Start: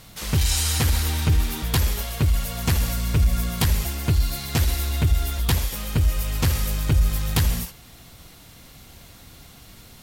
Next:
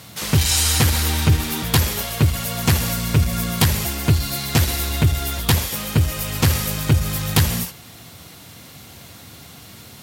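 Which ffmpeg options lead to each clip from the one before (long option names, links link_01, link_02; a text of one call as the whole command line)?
ffmpeg -i in.wav -af "highpass=frequency=81:width=0.5412,highpass=frequency=81:width=1.3066,volume=6dB" out.wav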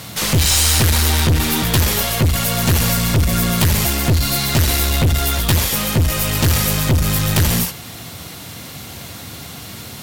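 ffmpeg -i in.wav -af "aeval=exprs='(tanh(10*val(0)+0.25)-tanh(0.25))/10':channel_layout=same,volume=9dB" out.wav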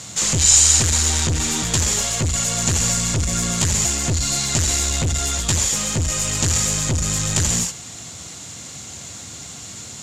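ffmpeg -i in.wav -af "lowpass=frequency=7100:width_type=q:width=7.7,volume=-6.5dB" out.wav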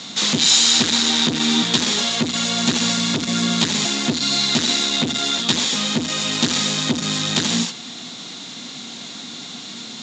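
ffmpeg -i in.wav -af "highpass=frequency=180:width=0.5412,highpass=frequency=180:width=1.3066,equalizer=frequency=240:width_type=q:width=4:gain=9,equalizer=frequency=560:width_type=q:width=4:gain=-4,equalizer=frequency=3700:width_type=q:width=4:gain=10,lowpass=frequency=5400:width=0.5412,lowpass=frequency=5400:width=1.3066,volume=3dB" out.wav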